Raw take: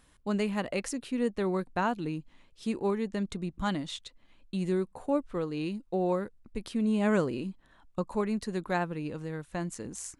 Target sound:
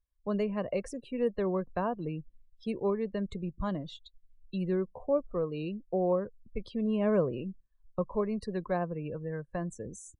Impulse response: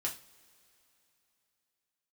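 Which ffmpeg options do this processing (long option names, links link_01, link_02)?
-filter_complex "[0:a]afftdn=noise_reduction=36:noise_floor=-43,aecho=1:1:1.8:0.48,acrossover=split=170|950[link_01][link_02][link_03];[link_03]acompressor=threshold=-47dB:ratio=4[link_04];[link_01][link_02][link_04]amix=inputs=3:normalize=0"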